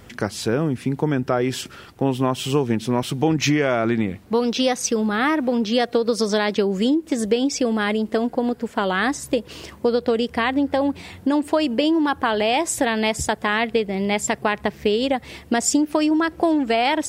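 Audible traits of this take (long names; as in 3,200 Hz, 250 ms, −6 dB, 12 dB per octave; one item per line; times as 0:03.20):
background noise floor −45 dBFS
spectral slope −4.5 dB per octave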